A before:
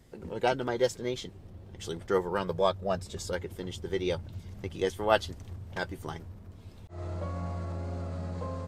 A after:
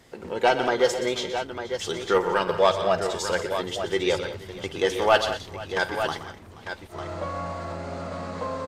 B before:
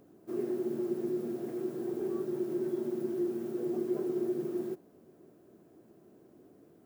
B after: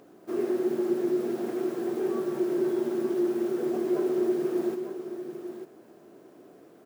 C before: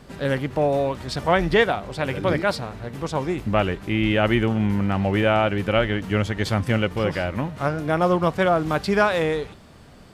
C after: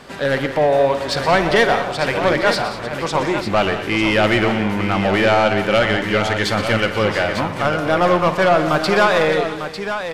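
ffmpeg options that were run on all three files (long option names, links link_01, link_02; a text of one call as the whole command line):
ffmpeg -i in.wav -filter_complex "[0:a]asplit=2[link_01][link_02];[link_02]highpass=frequency=720:poles=1,volume=17dB,asoftclip=type=tanh:threshold=-6.5dB[link_03];[link_01][link_03]amix=inputs=2:normalize=0,lowpass=frequency=5000:poles=1,volume=-6dB,aecho=1:1:52|122|179|208|479|899:0.168|0.251|0.211|0.119|0.112|0.355" out.wav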